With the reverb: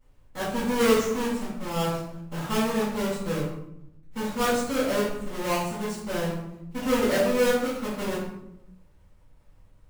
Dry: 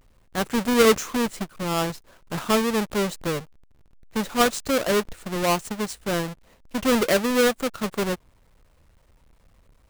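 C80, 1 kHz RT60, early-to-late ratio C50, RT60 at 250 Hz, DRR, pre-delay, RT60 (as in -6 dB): 5.0 dB, 0.75 s, 1.5 dB, 1.3 s, -12.0 dB, 4 ms, 0.80 s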